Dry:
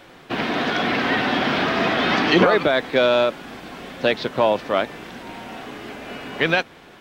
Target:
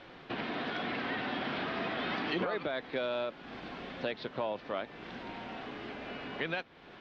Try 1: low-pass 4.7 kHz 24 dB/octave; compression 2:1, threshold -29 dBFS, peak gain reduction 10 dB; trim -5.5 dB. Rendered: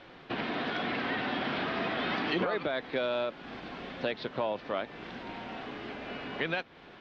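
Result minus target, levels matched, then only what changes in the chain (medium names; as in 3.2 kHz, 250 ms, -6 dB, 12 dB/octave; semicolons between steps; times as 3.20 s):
compression: peak gain reduction -3 dB
change: compression 2:1, threshold -35 dBFS, peak gain reduction 13 dB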